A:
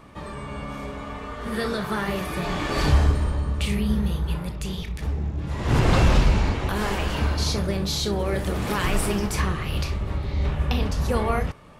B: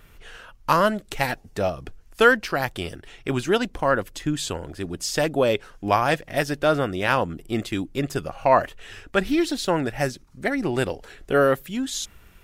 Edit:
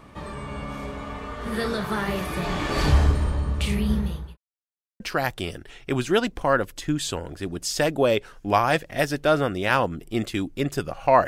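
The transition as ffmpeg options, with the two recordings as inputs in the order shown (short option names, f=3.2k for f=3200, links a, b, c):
-filter_complex "[0:a]apad=whole_dur=11.27,atrim=end=11.27,asplit=2[a][b];[a]atrim=end=4.37,asetpts=PTS-STARTPTS,afade=t=out:st=3.94:d=0.43[c];[b]atrim=start=4.37:end=5,asetpts=PTS-STARTPTS,volume=0[d];[1:a]atrim=start=2.38:end=8.65,asetpts=PTS-STARTPTS,afade=t=in:d=0.004:c=hsin[e];[c][d][e]concat=n=3:v=0:a=1"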